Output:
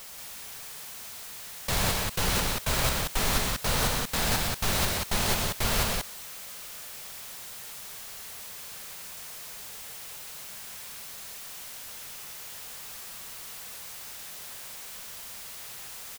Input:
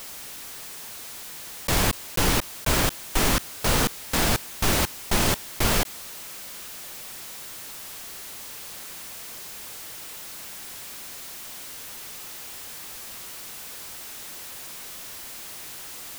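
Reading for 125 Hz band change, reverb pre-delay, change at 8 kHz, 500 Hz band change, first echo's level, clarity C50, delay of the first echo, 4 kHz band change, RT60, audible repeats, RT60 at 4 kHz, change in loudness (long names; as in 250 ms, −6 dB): −3.0 dB, no reverb audible, −2.5 dB, −4.0 dB, −7.5 dB, no reverb audible, 124 ms, −1.5 dB, no reverb audible, 2, no reverb audible, −3.0 dB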